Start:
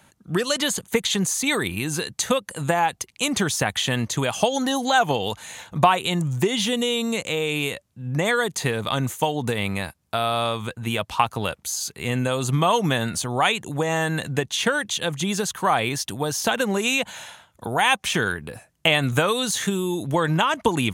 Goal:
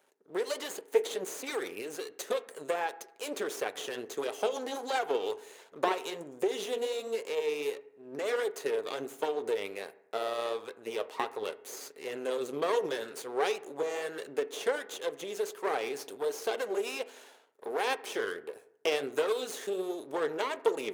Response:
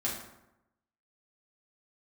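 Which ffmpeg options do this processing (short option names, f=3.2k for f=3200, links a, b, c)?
-filter_complex "[0:a]flanger=delay=0.1:depth=9.4:regen=62:speed=1.4:shape=triangular,aeval=exprs='max(val(0),0)':c=same,highpass=f=420:t=q:w=4.9,asplit=2[a][b];[1:a]atrim=start_sample=2205,asetrate=52920,aresample=44100,lowpass=2.5k[c];[b][c]afir=irnorm=-1:irlink=0,volume=-14dB[d];[a][d]amix=inputs=2:normalize=0,volume=-7.5dB"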